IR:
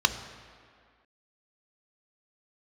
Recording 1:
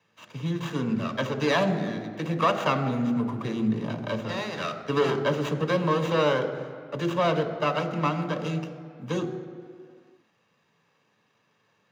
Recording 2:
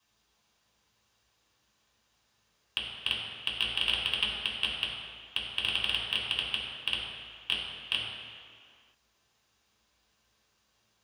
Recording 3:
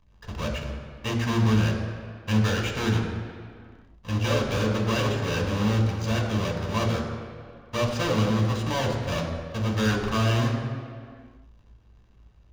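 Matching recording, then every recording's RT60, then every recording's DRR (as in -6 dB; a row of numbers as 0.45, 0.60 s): 1; 2.1, 2.1, 2.1 s; 8.5, -4.5, 1.5 dB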